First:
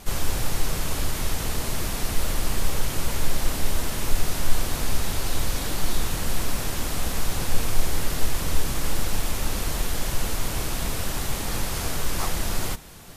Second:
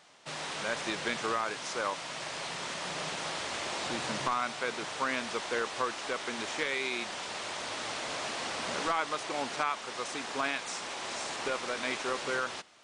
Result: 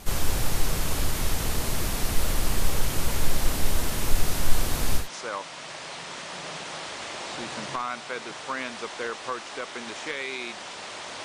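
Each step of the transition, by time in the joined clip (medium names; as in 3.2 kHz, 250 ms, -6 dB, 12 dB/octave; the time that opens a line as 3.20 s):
first
5.02 s: go over to second from 1.54 s, crossfade 0.14 s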